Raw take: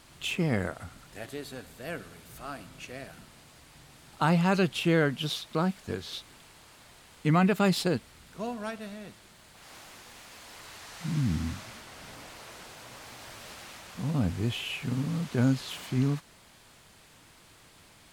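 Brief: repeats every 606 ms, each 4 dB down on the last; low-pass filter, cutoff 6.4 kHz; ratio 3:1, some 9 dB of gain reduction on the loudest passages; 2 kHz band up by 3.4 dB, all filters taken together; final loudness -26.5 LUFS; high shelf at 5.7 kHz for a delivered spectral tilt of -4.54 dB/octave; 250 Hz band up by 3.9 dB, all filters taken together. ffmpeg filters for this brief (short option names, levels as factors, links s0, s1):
-af "lowpass=6400,equalizer=f=250:t=o:g=5.5,equalizer=f=2000:t=o:g=3.5,highshelf=f=5700:g=8.5,acompressor=threshold=0.0355:ratio=3,aecho=1:1:606|1212|1818|2424|3030|3636|4242|4848|5454:0.631|0.398|0.25|0.158|0.0994|0.0626|0.0394|0.0249|0.0157,volume=2.24"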